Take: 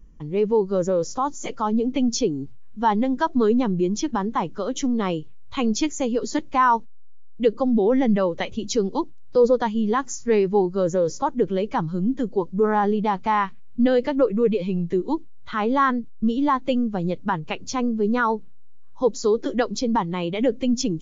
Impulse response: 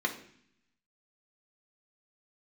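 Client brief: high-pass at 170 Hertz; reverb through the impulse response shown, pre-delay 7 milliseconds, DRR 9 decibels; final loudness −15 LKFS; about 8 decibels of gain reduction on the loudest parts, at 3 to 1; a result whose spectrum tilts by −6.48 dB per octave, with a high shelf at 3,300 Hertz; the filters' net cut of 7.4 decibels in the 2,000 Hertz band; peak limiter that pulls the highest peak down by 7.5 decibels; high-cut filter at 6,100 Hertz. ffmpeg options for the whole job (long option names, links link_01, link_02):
-filter_complex "[0:a]highpass=170,lowpass=6100,equalizer=frequency=2000:width_type=o:gain=-8,highshelf=frequency=3300:gain=-8,acompressor=threshold=-25dB:ratio=3,alimiter=limit=-23.5dB:level=0:latency=1,asplit=2[link_01][link_02];[1:a]atrim=start_sample=2205,adelay=7[link_03];[link_02][link_03]afir=irnorm=-1:irlink=0,volume=-16.5dB[link_04];[link_01][link_04]amix=inputs=2:normalize=0,volume=16.5dB"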